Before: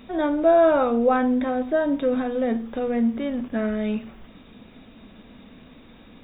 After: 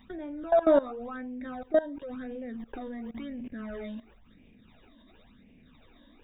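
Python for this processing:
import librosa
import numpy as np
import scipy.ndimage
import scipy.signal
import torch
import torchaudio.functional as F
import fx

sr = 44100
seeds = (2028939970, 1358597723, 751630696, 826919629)

y = fx.phaser_stages(x, sr, stages=12, low_hz=130.0, high_hz=1300.0, hz=0.95, feedback_pct=35)
y = fx.level_steps(y, sr, step_db=19)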